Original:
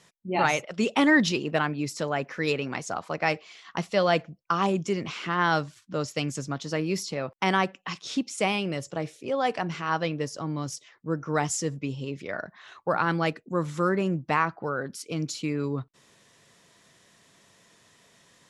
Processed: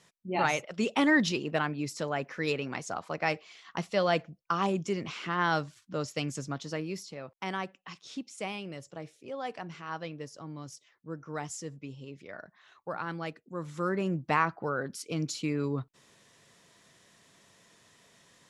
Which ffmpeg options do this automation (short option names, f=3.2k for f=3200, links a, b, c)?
-af "volume=5dB,afade=t=out:st=6.56:d=0.47:silence=0.446684,afade=t=in:st=13.54:d=0.78:silence=0.354813"